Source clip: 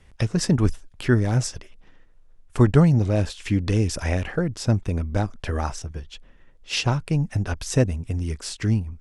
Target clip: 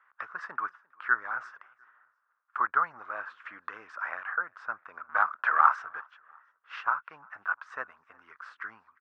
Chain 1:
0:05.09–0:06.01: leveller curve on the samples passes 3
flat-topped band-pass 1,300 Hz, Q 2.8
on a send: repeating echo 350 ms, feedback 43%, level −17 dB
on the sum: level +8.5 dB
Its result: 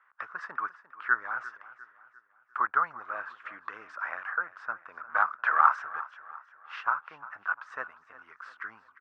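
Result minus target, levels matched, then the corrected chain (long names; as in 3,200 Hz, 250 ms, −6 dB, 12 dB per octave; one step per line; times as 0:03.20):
echo-to-direct +11 dB
0:05.09–0:06.01: leveller curve on the samples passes 3
flat-topped band-pass 1,300 Hz, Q 2.8
on a send: repeating echo 350 ms, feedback 43%, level −28 dB
on the sum: level +8.5 dB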